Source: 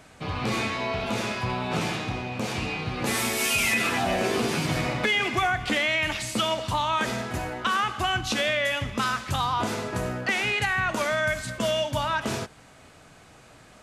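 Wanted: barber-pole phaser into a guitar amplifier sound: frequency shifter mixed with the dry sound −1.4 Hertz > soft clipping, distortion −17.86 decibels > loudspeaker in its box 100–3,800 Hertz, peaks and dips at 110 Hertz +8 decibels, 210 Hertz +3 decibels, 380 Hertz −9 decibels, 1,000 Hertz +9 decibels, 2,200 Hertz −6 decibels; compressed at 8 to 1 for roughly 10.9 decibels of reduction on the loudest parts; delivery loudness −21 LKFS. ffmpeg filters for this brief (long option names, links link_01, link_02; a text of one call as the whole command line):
ffmpeg -i in.wav -filter_complex "[0:a]acompressor=threshold=-32dB:ratio=8,asplit=2[link_01][link_02];[link_02]afreqshift=-1.4[link_03];[link_01][link_03]amix=inputs=2:normalize=1,asoftclip=threshold=-31.5dB,highpass=100,equalizer=frequency=110:width_type=q:width=4:gain=8,equalizer=frequency=210:width_type=q:width=4:gain=3,equalizer=frequency=380:width_type=q:width=4:gain=-9,equalizer=frequency=1000:width_type=q:width=4:gain=9,equalizer=frequency=2200:width_type=q:width=4:gain=-6,lowpass=frequency=3800:width=0.5412,lowpass=frequency=3800:width=1.3066,volume=18dB" out.wav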